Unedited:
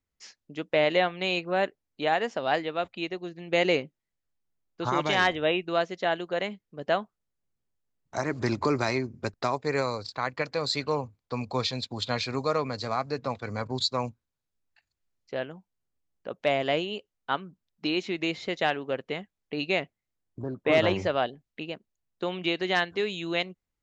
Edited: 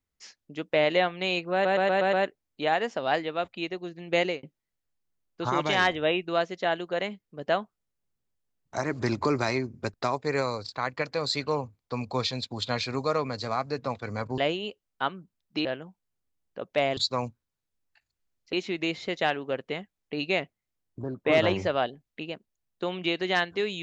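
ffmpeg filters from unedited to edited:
-filter_complex "[0:a]asplit=11[a][b][c][d][e][f][g][h][i][j][k];[a]atrim=end=1.652[l];[b]atrim=start=1.528:end=1.652[m];[c]atrim=start=1.528:end=1.652[n];[d]atrim=start=1.528:end=1.652[o];[e]atrim=start=1.528:end=1.652[p];[f]atrim=start=1.528:end=3.83,asetpts=PTS-STARTPTS,afade=t=out:st=2.052:d=0.25[q];[g]atrim=start=3.83:end=13.782,asetpts=PTS-STARTPTS,afade=t=in:d=0.004:c=hsin[r];[h]atrim=start=16.658:end=17.932[s];[i]atrim=start=15.338:end=16.662[t];[j]atrim=start=13.778:end=15.342[u];[k]atrim=start=17.928[v];[l][m]acrossfade=d=0.004:c1=hsin:c2=hsin[w];[w][n]acrossfade=d=0.004:c1=hsin:c2=hsin[x];[x][o]acrossfade=d=0.004:c1=hsin:c2=hsin[y];[y][p]acrossfade=d=0.004:c1=hsin:c2=hsin[z];[q][r]concat=n=2:v=0:a=1[aa];[z][aa]acrossfade=d=0.004:c1=hsin:c2=hsin[ab];[ab][s]acrossfade=d=0.004:c1=hsin:c2=hsin[ac];[ac][t]acrossfade=d=0.004:c1=hsin:c2=hsin[ad];[ad][u]acrossfade=d=0.004:c1=hsin:c2=hsin[ae];[ae][v]acrossfade=d=0.004:c1=hsin:c2=hsin"

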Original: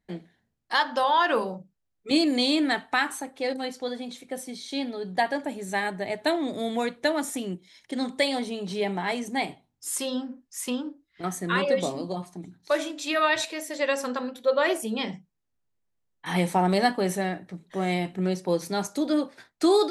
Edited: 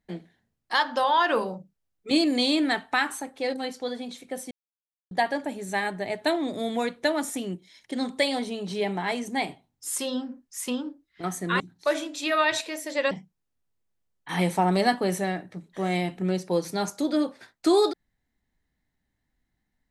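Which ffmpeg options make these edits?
-filter_complex "[0:a]asplit=5[a][b][c][d][e];[a]atrim=end=4.51,asetpts=PTS-STARTPTS,afade=t=out:st=4.506:d=0.004:c=hsin[f];[b]atrim=start=4.51:end=5.11,asetpts=PTS-STARTPTS,volume=0[g];[c]atrim=start=5.11:end=11.602,asetpts=PTS-STARTPTS,afade=t=in:d=0.004:c=hsin[h];[d]atrim=start=12.438:end=13.952[i];[e]atrim=start=15.078[j];[f][g][h]concat=n=3:v=0:a=1[k];[k][i]acrossfade=d=0.004:c1=hsin:c2=hsin[l];[l][j]acrossfade=d=0.004:c1=hsin:c2=hsin"

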